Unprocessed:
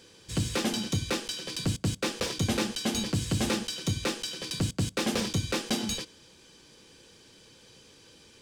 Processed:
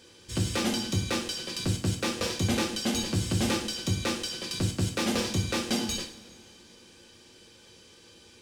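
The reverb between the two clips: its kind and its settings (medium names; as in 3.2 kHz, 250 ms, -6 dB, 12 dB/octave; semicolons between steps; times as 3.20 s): two-slope reverb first 0.47 s, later 3.1 s, from -21 dB, DRR 2.5 dB; trim -1 dB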